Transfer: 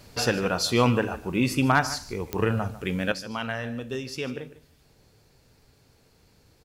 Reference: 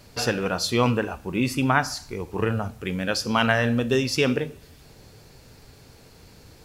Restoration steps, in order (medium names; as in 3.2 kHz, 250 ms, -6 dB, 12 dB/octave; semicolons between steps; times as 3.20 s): clip repair -10 dBFS; de-click; inverse comb 149 ms -16.5 dB; trim 0 dB, from 3.12 s +10.5 dB